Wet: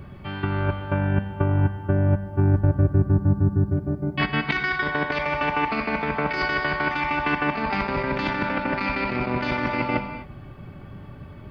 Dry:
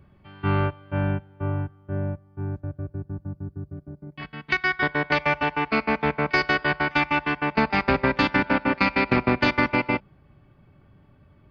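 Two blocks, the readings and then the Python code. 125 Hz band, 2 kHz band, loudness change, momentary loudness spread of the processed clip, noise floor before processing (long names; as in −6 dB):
+7.0 dB, −1.5 dB, +0.5 dB, 15 LU, −57 dBFS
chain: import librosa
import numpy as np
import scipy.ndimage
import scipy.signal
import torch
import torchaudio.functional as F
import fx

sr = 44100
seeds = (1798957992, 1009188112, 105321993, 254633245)

y = fx.over_compress(x, sr, threshold_db=-30.0, ratio=-1.0)
y = fx.rev_gated(y, sr, seeds[0], gate_ms=280, shape='flat', drr_db=8.0)
y = y * 10.0 ** (7.5 / 20.0)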